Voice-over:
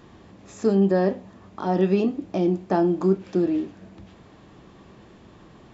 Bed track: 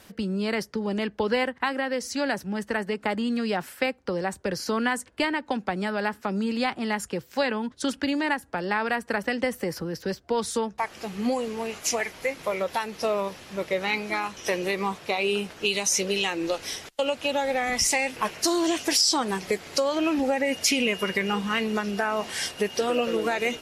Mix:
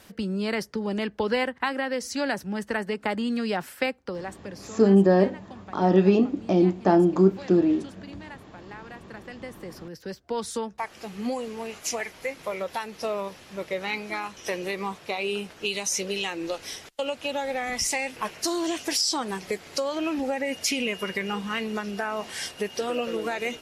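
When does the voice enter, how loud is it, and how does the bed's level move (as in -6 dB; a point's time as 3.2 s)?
4.15 s, +2.0 dB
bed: 3.89 s -0.5 dB
4.85 s -17.5 dB
9.04 s -17.5 dB
10.37 s -3.5 dB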